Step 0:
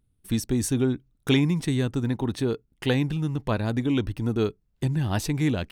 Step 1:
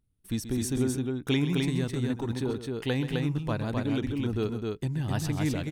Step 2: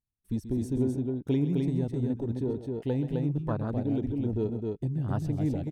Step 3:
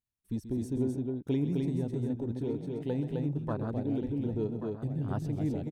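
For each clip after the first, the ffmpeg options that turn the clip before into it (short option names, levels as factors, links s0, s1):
-af "aecho=1:1:131.2|259.5:0.251|0.708,volume=0.531"
-af "afwtdn=0.0251"
-filter_complex "[0:a]lowshelf=f=62:g=-7.5,asplit=2[s0][s1];[s1]aecho=0:1:1132:0.299[s2];[s0][s2]amix=inputs=2:normalize=0,volume=0.75"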